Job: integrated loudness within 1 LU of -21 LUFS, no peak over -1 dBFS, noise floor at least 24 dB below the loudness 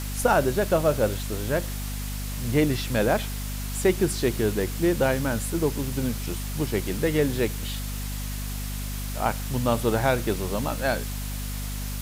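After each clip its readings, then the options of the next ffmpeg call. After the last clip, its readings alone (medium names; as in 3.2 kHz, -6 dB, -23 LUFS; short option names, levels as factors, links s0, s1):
hum 50 Hz; highest harmonic 250 Hz; hum level -29 dBFS; noise floor -31 dBFS; noise floor target -50 dBFS; loudness -26.0 LUFS; peak level -8.0 dBFS; loudness target -21.0 LUFS
-> -af "bandreject=f=50:t=h:w=6,bandreject=f=100:t=h:w=6,bandreject=f=150:t=h:w=6,bandreject=f=200:t=h:w=6,bandreject=f=250:t=h:w=6"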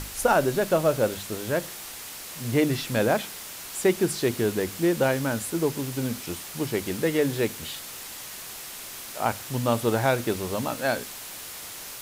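hum not found; noise floor -39 dBFS; noise floor target -51 dBFS
-> -af "afftdn=nr=12:nf=-39"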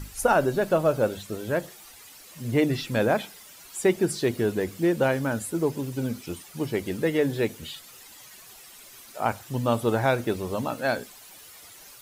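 noise floor -48 dBFS; noise floor target -50 dBFS
-> -af "afftdn=nr=6:nf=-48"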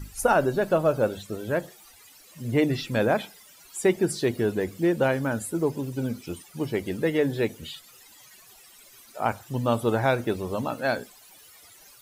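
noise floor -53 dBFS; loudness -26.0 LUFS; peak level -9.0 dBFS; loudness target -21.0 LUFS
-> -af "volume=1.78"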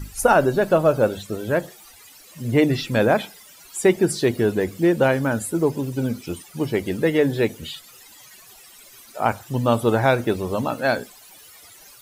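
loudness -21.0 LUFS; peak level -4.0 dBFS; noise floor -48 dBFS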